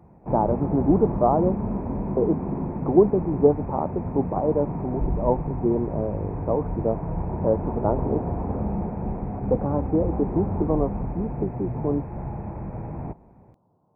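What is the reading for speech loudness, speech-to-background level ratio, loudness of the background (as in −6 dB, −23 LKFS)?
−25.0 LKFS, 5.0 dB, −30.0 LKFS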